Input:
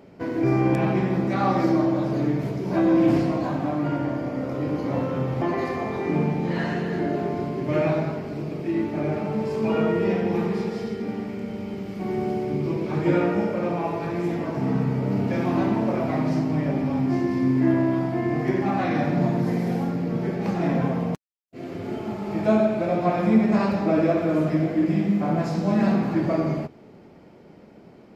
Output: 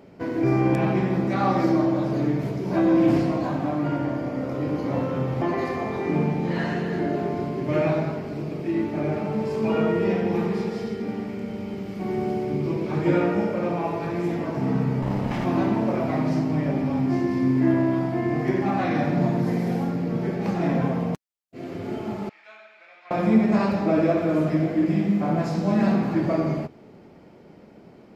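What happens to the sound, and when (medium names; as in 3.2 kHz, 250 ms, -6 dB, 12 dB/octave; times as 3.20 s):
15.02–15.45 s: comb filter that takes the minimum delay 1 ms
22.29–23.11 s: ladder band-pass 2.5 kHz, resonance 30%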